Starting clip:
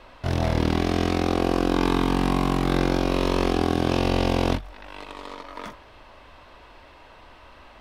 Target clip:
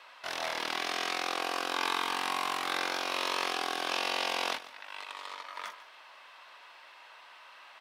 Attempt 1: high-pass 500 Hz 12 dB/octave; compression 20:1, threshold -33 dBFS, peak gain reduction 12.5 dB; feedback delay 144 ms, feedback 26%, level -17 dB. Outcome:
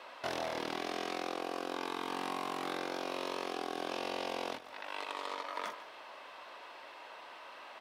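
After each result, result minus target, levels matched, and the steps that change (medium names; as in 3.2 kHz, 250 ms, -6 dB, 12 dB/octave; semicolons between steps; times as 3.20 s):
compression: peak gain reduction +12.5 dB; 500 Hz band +8.0 dB
remove: compression 20:1, threshold -33 dBFS, peak gain reduction 12.5 dB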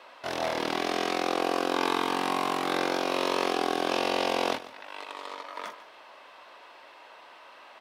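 500 Hz band +6.5 dB
change: high-pass 1.1 kHz 12 dB/octave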